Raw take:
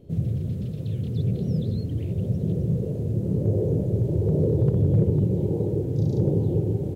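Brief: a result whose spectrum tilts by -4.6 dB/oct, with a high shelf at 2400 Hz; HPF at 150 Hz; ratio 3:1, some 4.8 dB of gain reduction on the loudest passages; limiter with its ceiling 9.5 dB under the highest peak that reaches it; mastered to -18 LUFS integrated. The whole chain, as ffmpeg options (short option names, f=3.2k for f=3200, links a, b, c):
-af "highpass=150,highshelf=f=2.4k:g=5,acompressor=threshold=-26dB:ratio=3,volume=17dB,alimiter=limit=-10dB:level=0:latency=1"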